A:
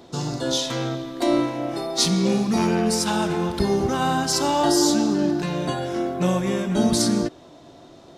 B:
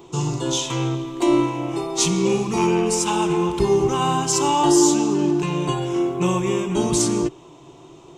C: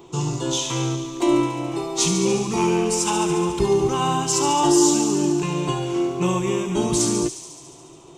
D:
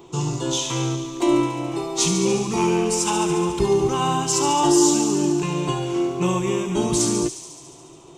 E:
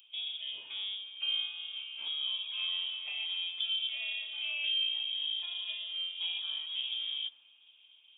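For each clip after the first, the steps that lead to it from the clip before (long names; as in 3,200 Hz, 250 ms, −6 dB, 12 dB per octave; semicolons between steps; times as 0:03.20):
EQ curve with evenly spaced ripples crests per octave 0.7, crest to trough 12 dB
delay with a high-pass on its return 71 ms, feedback 77%, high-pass 3,800 Hz, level −6.5 dB; level −1 dB
no processing that can be heard
voice inversion scrambler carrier 3,500 Hz; first difference; level −8 dB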